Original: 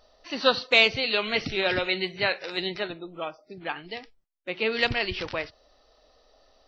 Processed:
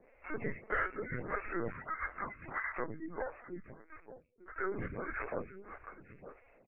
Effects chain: inharmonic rescaling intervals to 75%; 1.69–2.78 HPF 720 Hz 24 dB/oct; 3.59–4.57 differentiator; compressor 3:1, threshold -35 dBFS, peak gain reduction 14.5 dB; air absorption 100 m; echo 0.898 s -13.5 dB; LPC vocoder at 8 kHz pitch kept; photocell phaser 1.6 Hz; gain +1.5 dB

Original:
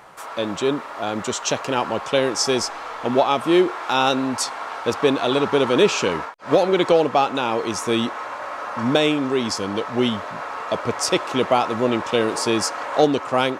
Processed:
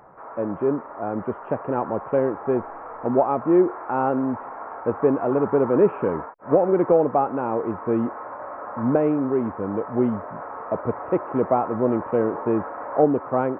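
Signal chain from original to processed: Gaussian blur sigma 6.8 samples

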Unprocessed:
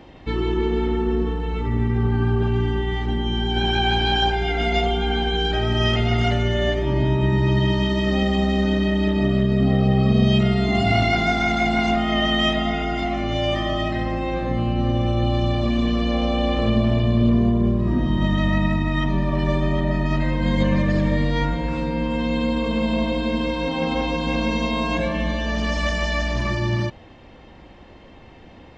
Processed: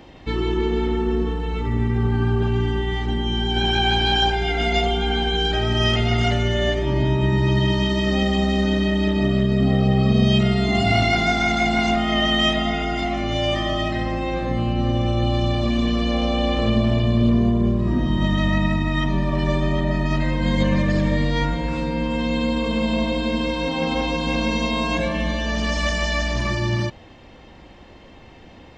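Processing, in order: high shelf 4600 Hz +7.5 dB

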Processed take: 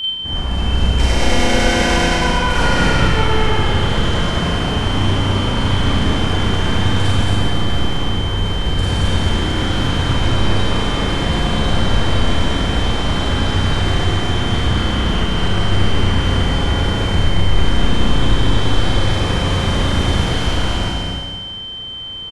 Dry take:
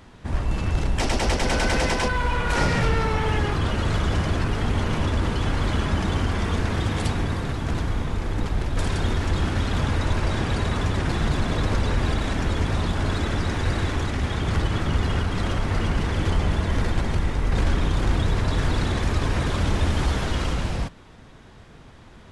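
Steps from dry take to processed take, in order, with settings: echo 0.224 s -3.5 dB; whine 3100 Hz -21 dBFS; Schroeder reverb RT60 1.6 s, combs from 32 ms, DRR -5.5 dB; gain -1.5 dB

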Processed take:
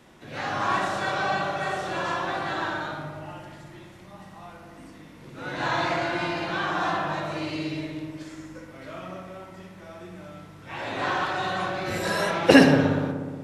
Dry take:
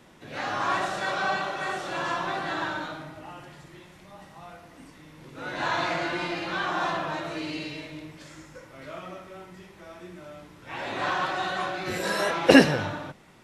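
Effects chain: dynamic EQ 120 Hz, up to +4 dB, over -49 dBFS, Q 1.4; on a send: darkening echo 60 ms, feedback 83%, low-pass 2200 Hz, level -6.5 dB

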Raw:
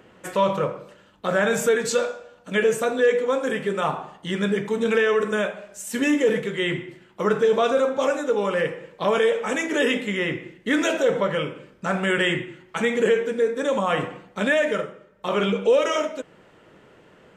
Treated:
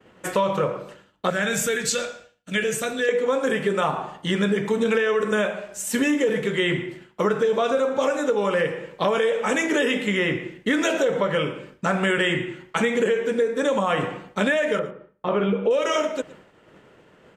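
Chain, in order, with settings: 1.3–3.09 ten-band EQ 250 Hz -5 dB, 500 Hz -8 dB, 1000 Hz -11 dB; expander -46 dBFS; 14.79–15.71 tape spacing loss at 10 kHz 35 dB; on a send: echo 0.114 s -21 dB; on the sum: compressor, threshold -23 dBFS, peak gain reduction 9 dB; gain +5 dB

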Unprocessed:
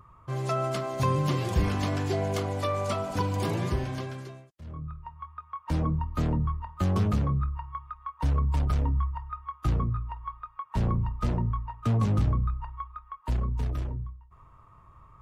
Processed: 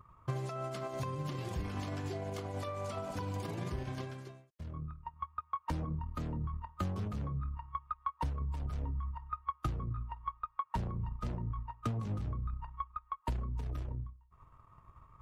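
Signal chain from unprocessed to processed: limiter -25.5 dBFS, peak gain reduction 11 dB; transient shaper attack +8 dB, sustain -6 dB; gain -6 dB

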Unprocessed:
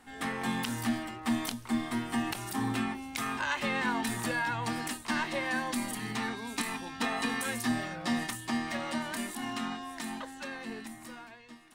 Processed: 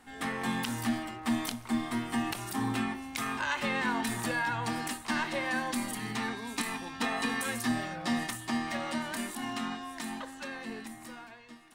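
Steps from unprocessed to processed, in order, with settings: band-limited delay 61 ms, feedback 66%, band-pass 1100 Hz, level -15 dB

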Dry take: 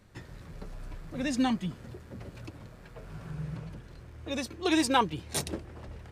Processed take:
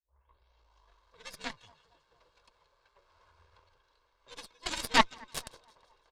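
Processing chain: tape start at the beginning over 1.16 s; three-band isolator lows -15 dB, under 570 Hz, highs -17 dB, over 7200 Hz; comb 1.8 ms, depth 49%; split-band echo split 1200 Hz, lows 0.231 s, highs 0.168 s, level -15.5 dB; frequency shift -72 Hz; graphic EQ 250/1000/2000/4000 Hz -8/+7/-5/+7 dB; added harmonics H 3 -11 dB, 4 -11 dB, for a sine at -9 dBFS

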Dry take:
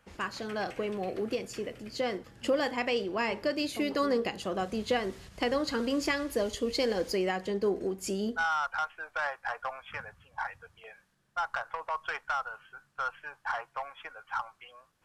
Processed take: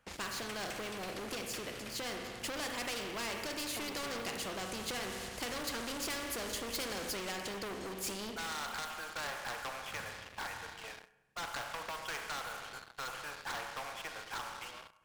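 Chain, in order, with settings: spring tank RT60 1.2 s, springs 30/37 ms, chirp 55 ms, DRR 7.5 dB; sample leveller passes 3; spectral compressor 2:1; gain -8.5 dB

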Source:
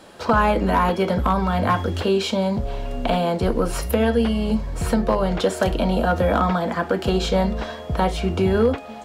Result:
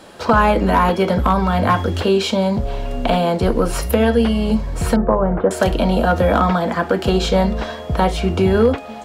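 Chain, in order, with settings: 4.96–5.51 LPF 1500 Hz 24 dB/oct; gain +4 dB

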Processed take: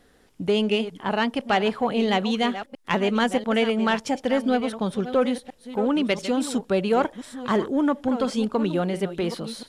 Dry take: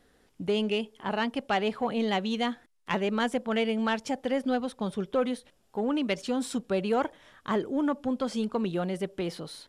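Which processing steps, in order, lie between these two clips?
reverse delay 0.688 s, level -12 dB; gain +5.5 dB

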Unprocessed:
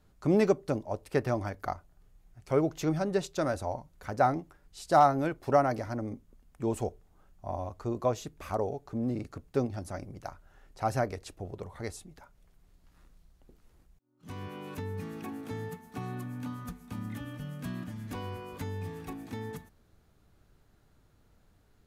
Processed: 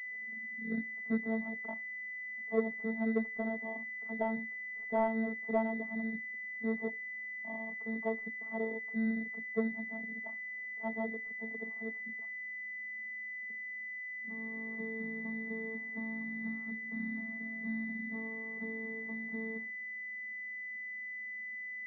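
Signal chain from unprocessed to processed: tape start at the beginning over 1.49 s; vocoder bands 16, saw 223 Hz; pulse-width modulation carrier 2000 Hz; gain -4.5 dB

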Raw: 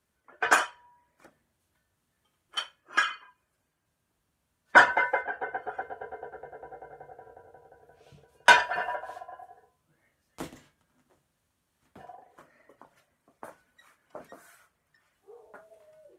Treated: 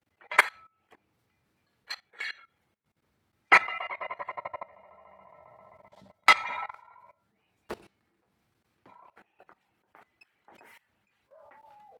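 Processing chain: speed mistake 33 rpm record played at 45 rpm; LPF 3600 Hz 6 dB/oct; level quantiser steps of 20 dB; gain +5.5 dB

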